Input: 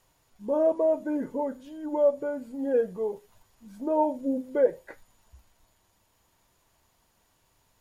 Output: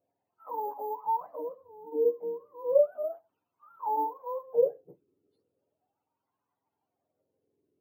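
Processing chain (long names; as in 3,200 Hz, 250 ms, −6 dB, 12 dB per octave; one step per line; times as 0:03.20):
frequency axis turned over on the octave scale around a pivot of 520 Hz
bad sample-rate conversion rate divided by 3×, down filtered, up zero stuff
LFO wah 0.35 Hz 380–1,000 Hz, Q 5
level +4.5 dB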